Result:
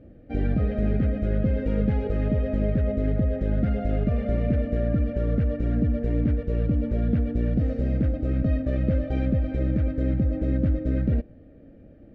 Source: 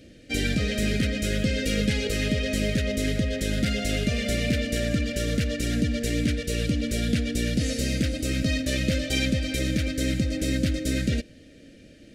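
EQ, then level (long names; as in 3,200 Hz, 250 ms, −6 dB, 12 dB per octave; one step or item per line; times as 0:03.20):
low-pass with resonance 960 Hz, resonance Q 9.5
low-shelf EQ 160 Hz +9.5 dB
−3.5 dB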